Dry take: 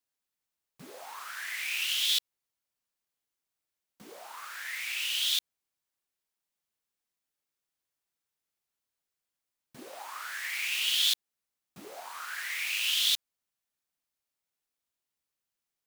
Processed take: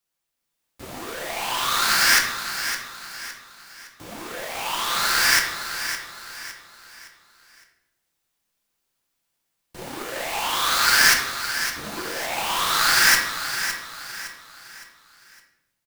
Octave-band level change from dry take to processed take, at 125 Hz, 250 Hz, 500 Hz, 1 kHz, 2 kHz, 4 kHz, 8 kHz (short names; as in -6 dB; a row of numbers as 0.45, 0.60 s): n/a, +19.0 dB, +18.5 dB, +21.0 dB, +14.5 dB, +6.0 dB, +12.5 dB